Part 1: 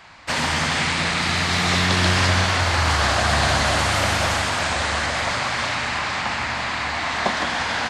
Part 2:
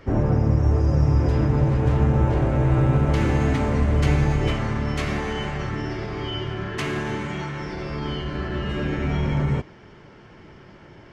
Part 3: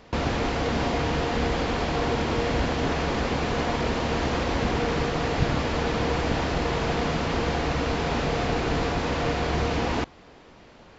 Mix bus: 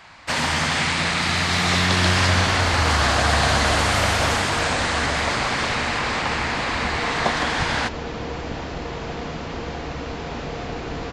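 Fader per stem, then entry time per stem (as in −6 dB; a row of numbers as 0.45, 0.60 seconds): 0.0 dB, muted, −4.5 dB; 0.00 s, muted, 2.20 s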